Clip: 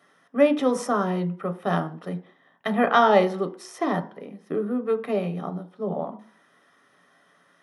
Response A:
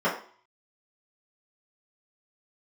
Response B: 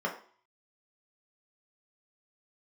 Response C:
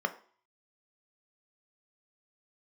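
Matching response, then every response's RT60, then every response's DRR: C; 0.50, 0.50, 0.50 s; -11.0, -2.0, 7.0 dB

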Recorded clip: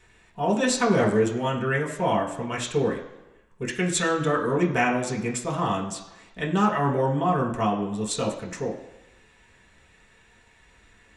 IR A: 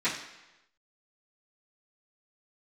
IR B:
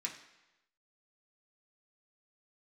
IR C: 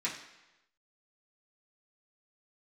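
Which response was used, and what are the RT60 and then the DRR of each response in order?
B; 1.0, 1.0, 1.0 s; -16.0, -2.5, -8.5 dB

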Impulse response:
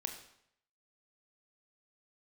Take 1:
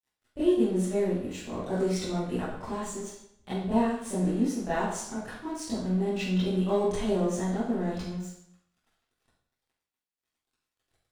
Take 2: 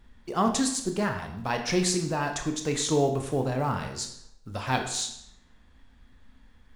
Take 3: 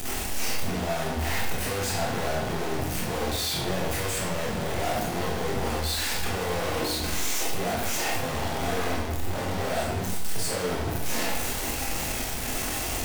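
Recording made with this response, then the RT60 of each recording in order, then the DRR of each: 2; 0.70, 0.70, 0.70 s; -14.5, 4.5, -4.5 dB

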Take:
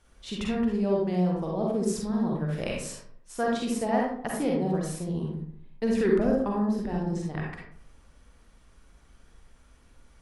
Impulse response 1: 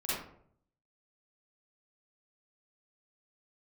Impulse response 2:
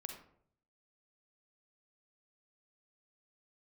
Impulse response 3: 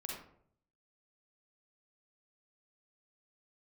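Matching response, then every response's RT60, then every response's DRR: 3; 0.65, 0.65, 0.65 s; -11.0, 3.5, -2.5 dB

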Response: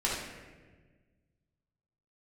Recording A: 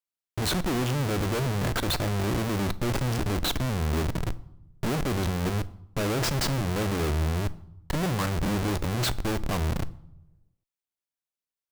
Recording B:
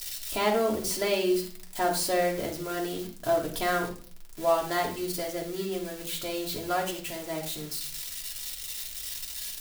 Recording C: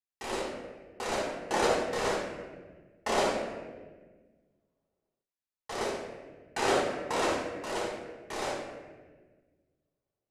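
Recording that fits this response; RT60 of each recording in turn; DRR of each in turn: C; not exponential, 0.45 s, 1.4 s; 14.5, -2.0, -6.5 dB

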